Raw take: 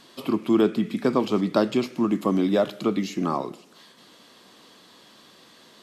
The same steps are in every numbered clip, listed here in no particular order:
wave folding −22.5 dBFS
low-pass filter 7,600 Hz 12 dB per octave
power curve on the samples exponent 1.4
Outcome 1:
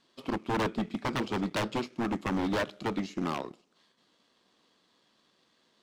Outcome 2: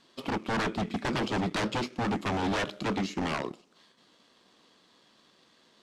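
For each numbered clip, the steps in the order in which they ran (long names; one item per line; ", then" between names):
power curve on the samples, then low-pass filter, then wave folding
wave folding, then power curve on the samples, then low-pass filter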